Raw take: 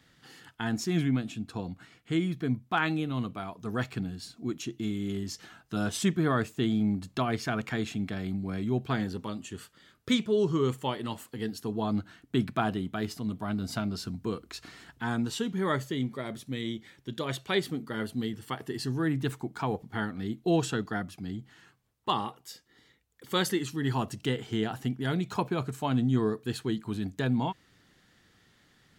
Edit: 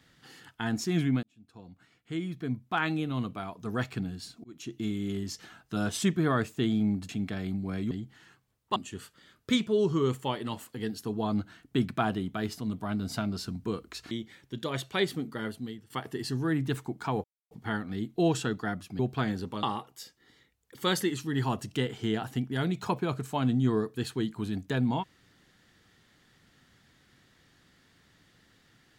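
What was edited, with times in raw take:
1.23–3.08 fade in
4.44–4.78 fade in
7.09–7.89 cut
8.71–9.35 swap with 21.27–22.12
14.7–16.66 cut
17.88–18.45 fade out, to -17 dB
19.79 insert silence 0.27 s

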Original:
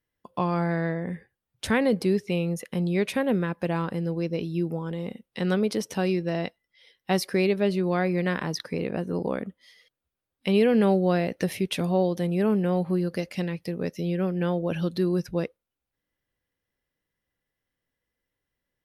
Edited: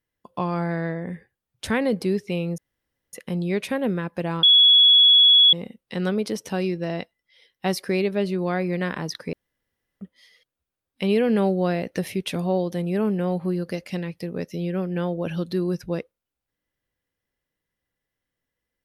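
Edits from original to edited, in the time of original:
2.58 insert room tone 0.55 s
3.88–4.98 bleep 3370 Hz -10.5 dBFS
8.78–9.46 room tone

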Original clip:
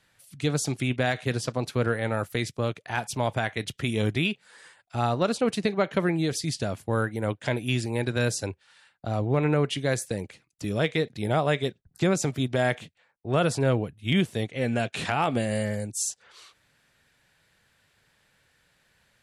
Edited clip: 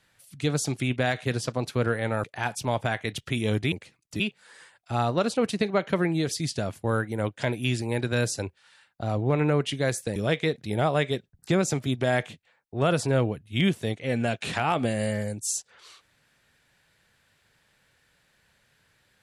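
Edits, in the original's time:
2.24–2.76 cut
10.2–10.68 move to 4.24

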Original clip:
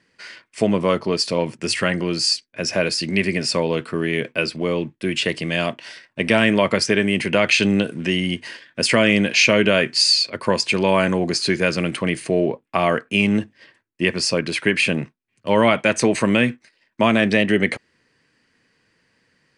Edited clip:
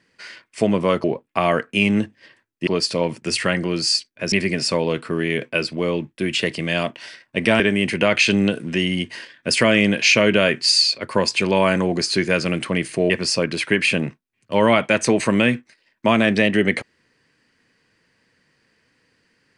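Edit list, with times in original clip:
2.69–3.15 cut
6.43–6.92 cut
12.42–14.05 move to 1.04

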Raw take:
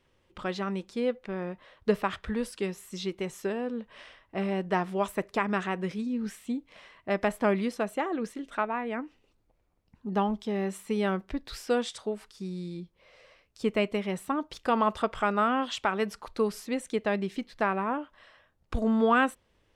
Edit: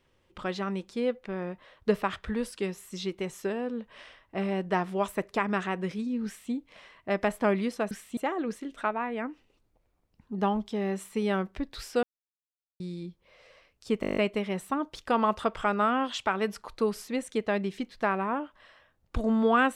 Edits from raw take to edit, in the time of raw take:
6.26–6.52 copy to 7.91
11.77–12.54 mute
13.75 stutter 0.02 s, 9 plays

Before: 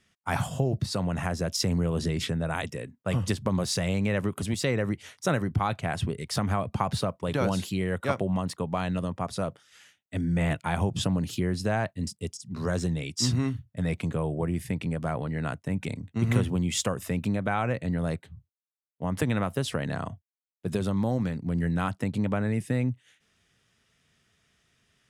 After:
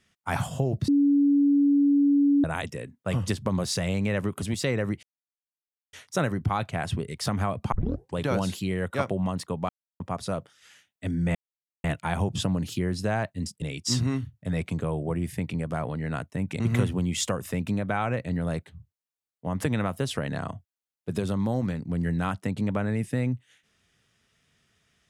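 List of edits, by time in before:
0.88–2.44 bleep 284 Hz -17 dBFS
5.03 insert silence 0.90 s
6.82 tape start 0.44 s
8.79–9.1 mute
10.45 insert silence 0.49 s
12.23–12.94 cut
15.92–16.17 cut

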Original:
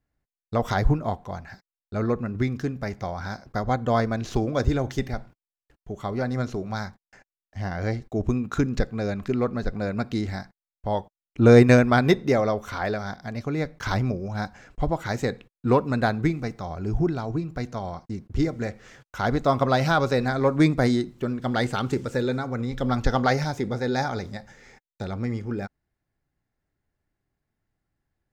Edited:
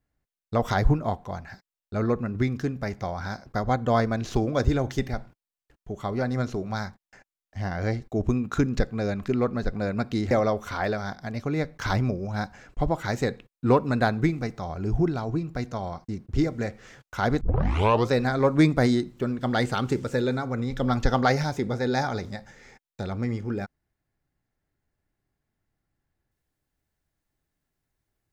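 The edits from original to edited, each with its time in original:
10.31–12.32 cut
19.42 tape start 0.70 s

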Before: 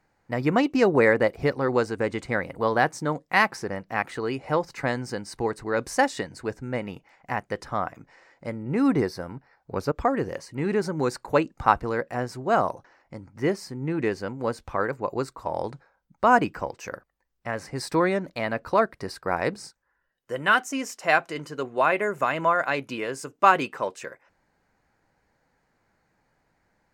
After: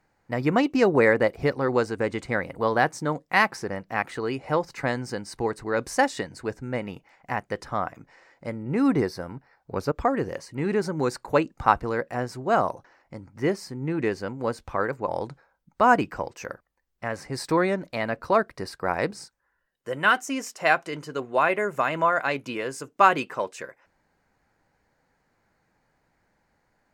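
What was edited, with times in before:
15.08–15.51 cut

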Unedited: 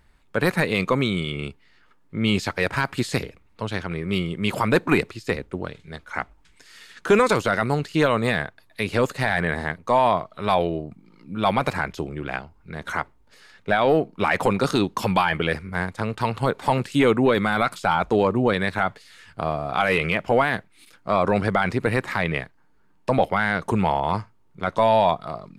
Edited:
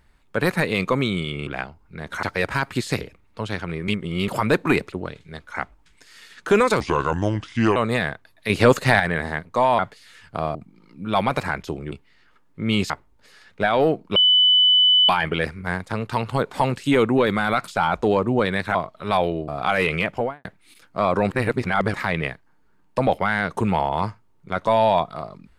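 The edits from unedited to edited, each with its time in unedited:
1.47–2.45 swap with 12.22–12.98
4.1–4.5 reverse
5.14–5.51 cut
7.39–8.09 speed 73%
8.83–9.33 gain +6.5 dB
10.12–10.85 swap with 18.83–19.59
14.24–15.17 bleep 3000 Hz -12 dBFS
20.17–20.56 studio fade out
21.42–22.05 reverse

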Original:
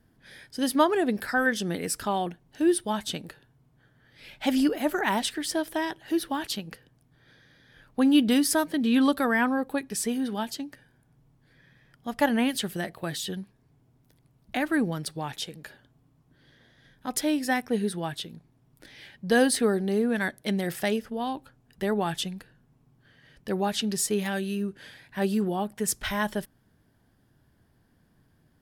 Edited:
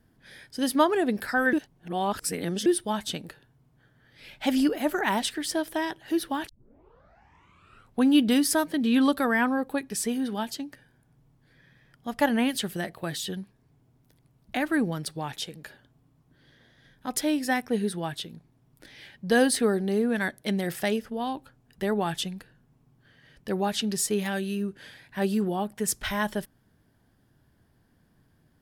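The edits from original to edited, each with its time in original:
1.53–2.66 reverse
6.49 tape start 1.58 s

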